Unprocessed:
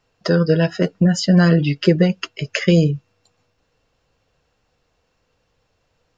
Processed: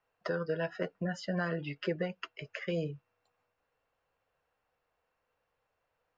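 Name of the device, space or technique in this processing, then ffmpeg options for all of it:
DJ mixer with the lows and highs turned down: -filter_complex "[0:a]acrossover=split=510 2500:gain=0.224 1 0.158[s0][s1][s2];[s0][s1][s2]amix=inputs=3:normalize=0,alimiter=limit=0.211:level=0:latency=1:release=332,volume=0.376"

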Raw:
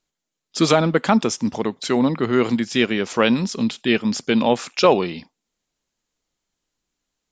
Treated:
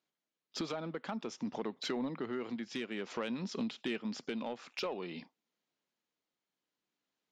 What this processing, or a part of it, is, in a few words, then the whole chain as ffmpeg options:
AM radio: -af "highpass=180,lowpass=4200,acompressor=threshold=0.0447:ratio=6,asoftclip=type=tanh:threshold=0.1,tremolo=f=0.55:d=0.28,volume=0.531"

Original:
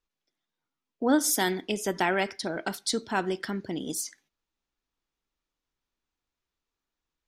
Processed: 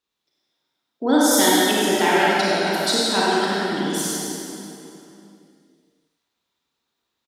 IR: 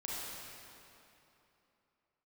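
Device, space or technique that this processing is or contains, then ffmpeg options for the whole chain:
PA in a hall: -filter_complex "[0:a]highpass=120,equalizer=f=3800:t=o:w=0.4:g=8,aecho=1:1:100:0.422[s0];[1:a]atrim=start_sample=2205[s1];[s0][s1]afir=irnorm=-1:irlink=0,volume=2.24"

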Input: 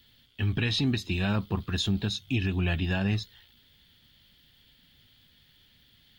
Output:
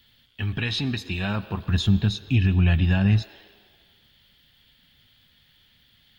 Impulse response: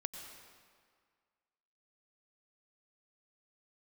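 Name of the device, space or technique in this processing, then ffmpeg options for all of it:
filtered reverb send: -filter_complex "[0:a]asplit=2[s0][s1];[s1]highpass=f=320:w=0.5412,highpass=f=320:w=1.3066,lowpass=4100[s2];[1:a]atrim=start_sample=2205[s3];[s2][s3]afir=irnorm=-1:irlink=0,volume=0.501[s4];[s0][s4]amix=inputs=2:normalize=0,asettb=1/sr,asplit=3[s5][s6][s7];[s5]atrim=end=1.664[s8];[s6]atrim=start=1.66:end=3.22,asetpts=PTS-STARTPTS,afade=t=in:d=0.004:c=qsin,afade=t=out:st=1.556:d=0.004:c=qsin,bass=f=250:g=10,treble=f=4000:g=-1[s9];[s7]atrim=start=3.216[s10];[s8][s9]acrossfade=d=0.004:c1=hsin:c2=qsin[s11];[s11][s10]acrossfade=d=0.004:c1=qsin:c2=hsin"

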